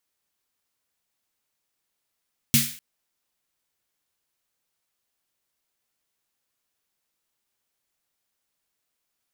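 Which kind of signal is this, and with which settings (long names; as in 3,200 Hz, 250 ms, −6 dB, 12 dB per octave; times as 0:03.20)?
synth snare length 0.25 s, tones 140 Hz, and 230 Hz, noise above 1,800 Hz, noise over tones 2 dB, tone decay 0.29 s, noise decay 0.47 s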